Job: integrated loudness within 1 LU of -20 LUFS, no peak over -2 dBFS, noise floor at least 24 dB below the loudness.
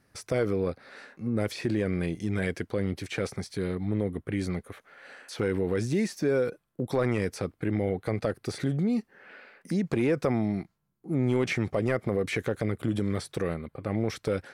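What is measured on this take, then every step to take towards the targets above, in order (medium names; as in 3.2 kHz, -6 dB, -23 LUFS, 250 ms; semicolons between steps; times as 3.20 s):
loudness -29.5 LUFS; peak level -17.0 dBFS; loudness target -20.0 LUFS
-> trim +9.5 dB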